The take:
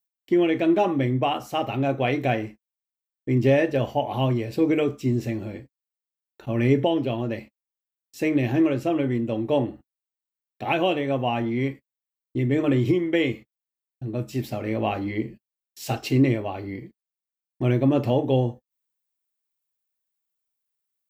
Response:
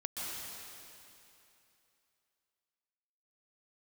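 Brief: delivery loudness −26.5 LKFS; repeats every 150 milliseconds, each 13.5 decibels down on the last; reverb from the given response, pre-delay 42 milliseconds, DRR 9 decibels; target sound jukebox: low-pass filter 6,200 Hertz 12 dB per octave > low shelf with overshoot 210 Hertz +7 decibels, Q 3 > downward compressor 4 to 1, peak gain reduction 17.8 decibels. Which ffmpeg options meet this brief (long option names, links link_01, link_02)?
-filter_complex "[0:a]aecho=1:1:150|300:0.211|0.0444,asplit=2[link_01][link_02];[1:a]atrim=start_sample=2205,adelay=42[link_03];[link_02][link_03]afir=irnorm=-1:irlink=0,volume=-11.5dB[link_04];[link_01][link_04]amix=inputs=2:normalize=0,lowpass=6200,lowshelf=frequency=210:width_type=q:width=3:gain=7,acompressor=threshold=-30dB:ratio=4,volume=6.5dB"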